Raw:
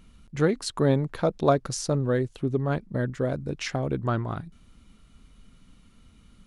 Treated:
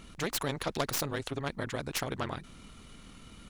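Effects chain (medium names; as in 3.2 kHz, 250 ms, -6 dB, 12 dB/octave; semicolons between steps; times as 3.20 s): tracing distortion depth 0.11 ms; granular stretch 0.54×, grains 50 ms; spectrum-flattening compressor 2:1; trim -6 dB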